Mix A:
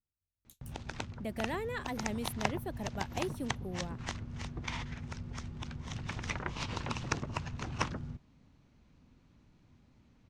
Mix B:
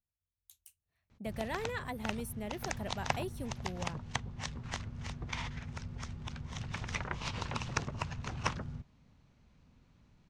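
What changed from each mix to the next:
background: entry +0.65 s
master: add parametric band 300 Hz −6 dB 0.64 octaves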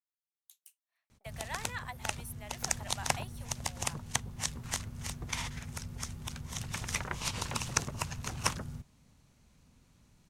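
speech: add high-pass filter 720 Hz 24 dB per octave
background: remove high-frequency loss of the air 160 metres

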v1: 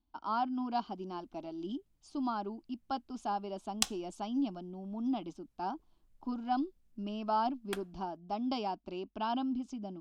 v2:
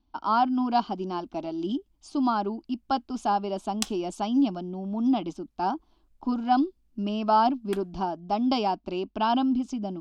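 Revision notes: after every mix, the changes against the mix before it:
speech +10.0 dB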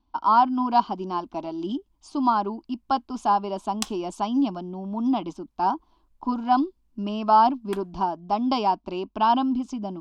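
master: add parametric band 1,000 Hz +9.5 dB 0.39 octaves

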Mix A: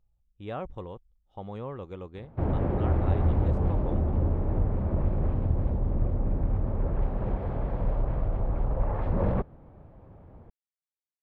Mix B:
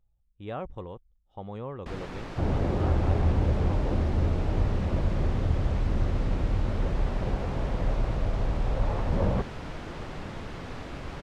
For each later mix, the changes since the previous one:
first sound: unmuted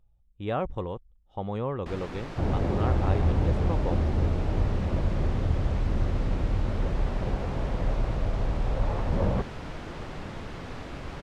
speech +6.5 dB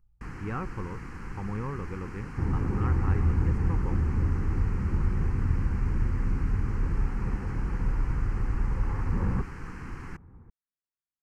first sound: entry −1.65 s
master: add phaser with its sweep stopped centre 1,500 Hz, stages 4

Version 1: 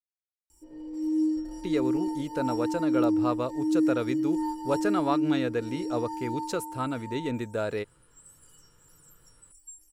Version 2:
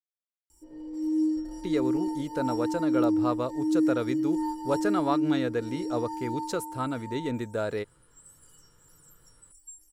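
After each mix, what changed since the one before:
master: add parametric band 2,600 Hz −5 dB 0.26 octaves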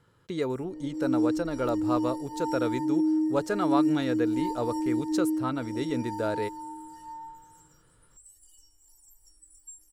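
speech: entry −1.35 s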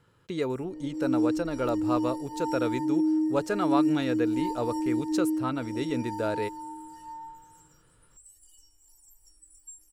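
master: add parametric band 2,600 Hz +5 dB 0.26 octaves

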